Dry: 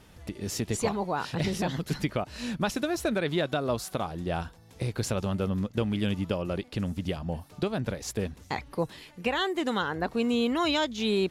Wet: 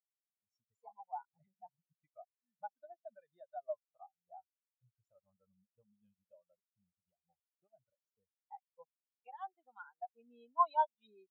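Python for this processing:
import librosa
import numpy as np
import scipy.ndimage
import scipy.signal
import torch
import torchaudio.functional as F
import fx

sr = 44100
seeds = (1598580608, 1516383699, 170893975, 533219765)

y = fx.low_shelf_res(x, sr, hz=540.0, db=-10.5, q=1.5)
y = fx.spectral_expand(y, sr, expansion=4.0)
y = y * librosa.db_to_amplitude(-3.0)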